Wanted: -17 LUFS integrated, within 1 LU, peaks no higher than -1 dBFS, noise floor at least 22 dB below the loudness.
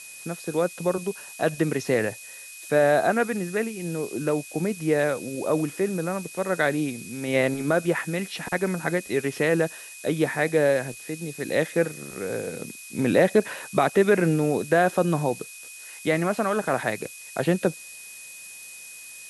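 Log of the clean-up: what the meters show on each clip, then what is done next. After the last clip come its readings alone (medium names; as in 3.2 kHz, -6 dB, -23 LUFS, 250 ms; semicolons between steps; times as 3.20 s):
steady tone 2.5 kHz; tone level -44 dBFS; noise floor -43 dBFS; noise floor target -47 dBFS; loudness -25.0 LUFS; peak level -6.5 dBFS; loudness target -17.0 LUFS
-> band-stop 2.5 kHz, Q 30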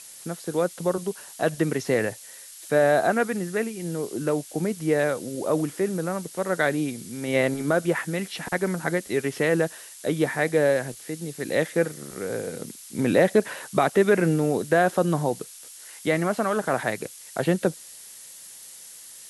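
steady tone not found; noise floor -44 dBFS; noise floor target -47 dBFS
-> noise print and reduce 6 dB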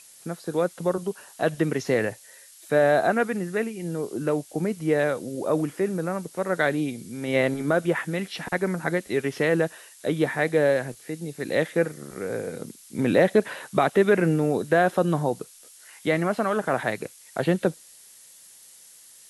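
noise floor -50 dBFS; loudness -25.0 LUFS; peak level -6.5 dBFS; loudness target -17.0 LUFS
-> trim +8 dB; peak limiter -1 dBFS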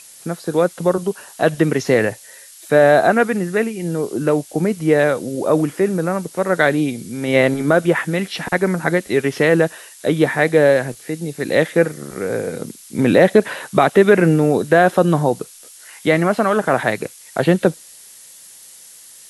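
loudness -17.5 LUFS; peak level -1.0 dBFS; noise floor -42 dBFS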